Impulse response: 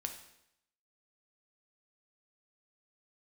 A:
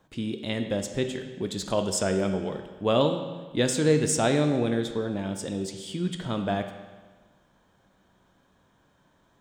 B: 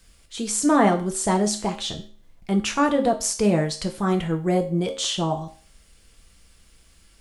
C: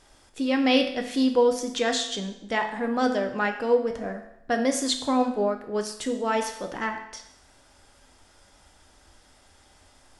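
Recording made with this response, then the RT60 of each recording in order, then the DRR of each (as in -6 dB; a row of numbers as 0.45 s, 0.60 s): C; 1.4 s, 0.40 s, 0.80 s; 5.5 dB, 4.0 dB, 4.5 dB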